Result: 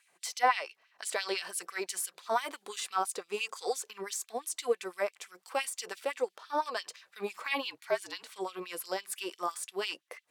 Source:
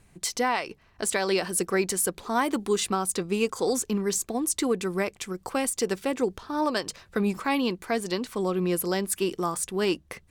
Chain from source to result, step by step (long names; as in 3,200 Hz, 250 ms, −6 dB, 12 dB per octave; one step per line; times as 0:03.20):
0:07.65–0:08.23: frequency shifter −57 Hz
auto-filter high-pass sine 5.9 Hz 500–3,300 Hz
harmonic and percussive parts rebalanced percussive −8 dB
level −2 dB